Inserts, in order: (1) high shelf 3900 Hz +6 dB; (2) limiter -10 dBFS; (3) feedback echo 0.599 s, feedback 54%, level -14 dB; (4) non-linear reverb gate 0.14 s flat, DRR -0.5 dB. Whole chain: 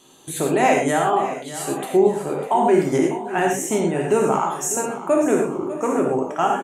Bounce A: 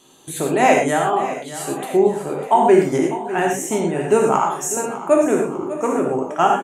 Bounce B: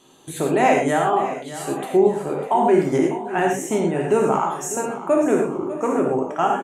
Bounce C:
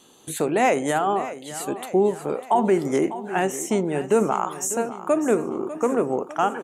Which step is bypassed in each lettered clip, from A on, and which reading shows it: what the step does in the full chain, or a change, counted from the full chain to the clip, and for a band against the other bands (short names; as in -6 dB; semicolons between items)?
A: 2, momentary loudness spread change +2 LU; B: 1, 8 kHz band -5.0 dB; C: 4, loudness change -3.0 LU